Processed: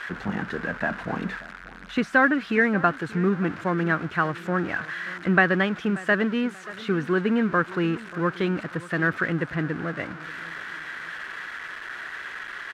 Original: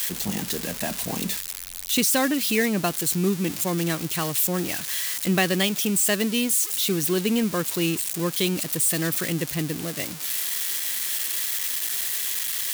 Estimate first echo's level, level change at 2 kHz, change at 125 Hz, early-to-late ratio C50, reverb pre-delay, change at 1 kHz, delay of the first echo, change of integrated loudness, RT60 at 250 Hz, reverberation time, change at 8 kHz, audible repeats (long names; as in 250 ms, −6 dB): −19.0 dB, +6.5 dB, 0.0 dB, no reverb audible, no reverb audible, +5.5 dB, 584 ms, −2.5 dB, no reverb audible, no reverb audible, below −25 dB, 2